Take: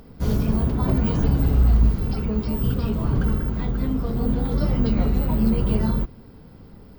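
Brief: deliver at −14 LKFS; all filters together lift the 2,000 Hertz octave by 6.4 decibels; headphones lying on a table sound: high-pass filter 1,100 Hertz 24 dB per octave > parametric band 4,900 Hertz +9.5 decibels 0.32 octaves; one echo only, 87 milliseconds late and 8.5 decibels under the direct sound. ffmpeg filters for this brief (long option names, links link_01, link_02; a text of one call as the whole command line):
ffmpeg -i in.wav -af "highpass=frequency=1100:width=0.5412,highpass=frequency=1100:width=1.3066,equalizer=frequency=2000:width_type=o:gain=8.5,equalizer=frequency=4900:width_type=o:width=0.32:gain=9.5,aecho=1:1:87:0.376,volume=19.5dB" out.wav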